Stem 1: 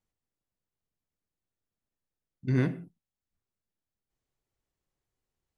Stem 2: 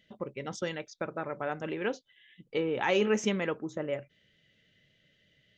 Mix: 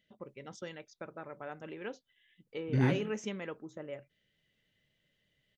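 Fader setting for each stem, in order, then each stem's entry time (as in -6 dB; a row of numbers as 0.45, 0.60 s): -2.0, -9.5 dB; 0.25, 0.00 s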